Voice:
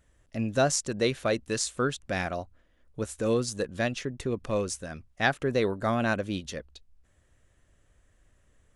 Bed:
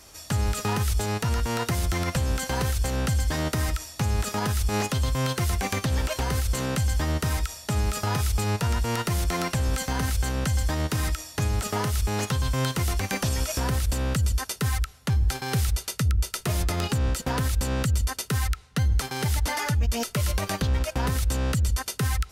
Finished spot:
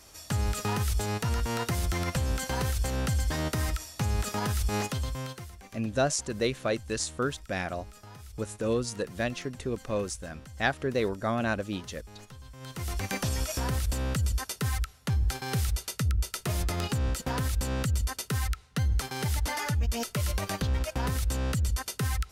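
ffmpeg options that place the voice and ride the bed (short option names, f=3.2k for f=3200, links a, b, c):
-filter_complex "[0:a]adelay=5400,volume=-2dB[a];[1:a]volume=14.5dB,afade=t=out:st=4.73:d=0.78:silence=0.11885,afade=t=in:st=12.6:d=0.48:silence=0.125893[b];[a][b]amix=inputs=2:normalize=0"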